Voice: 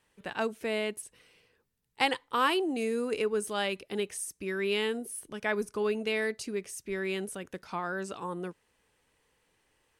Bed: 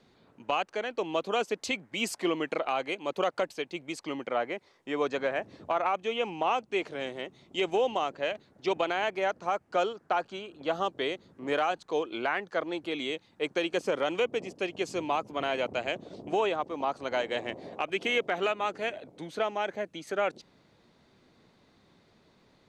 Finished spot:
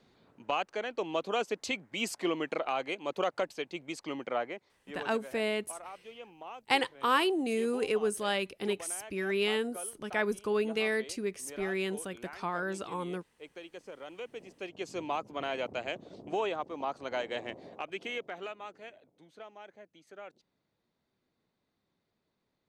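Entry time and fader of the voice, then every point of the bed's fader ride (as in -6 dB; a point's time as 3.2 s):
4.70 s, 0.0 dB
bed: 4.35 s -2.5 dB
5.23 s -17.5 dB
13.96 s -17.5 dB
15.02 s -4.5 dB
17.49 s -4.5 dB
19.22 s -18.5 dB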